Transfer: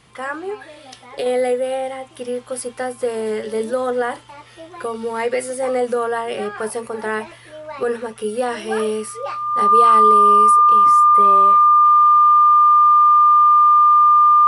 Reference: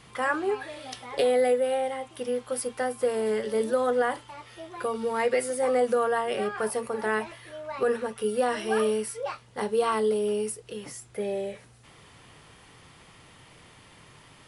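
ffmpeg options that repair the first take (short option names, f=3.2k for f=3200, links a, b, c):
-af "bandreject=f=1.2k:w=30,asetnsamples=n=441:p=0,asendcmd='1.26 volume volume -4dB',volume=0dB"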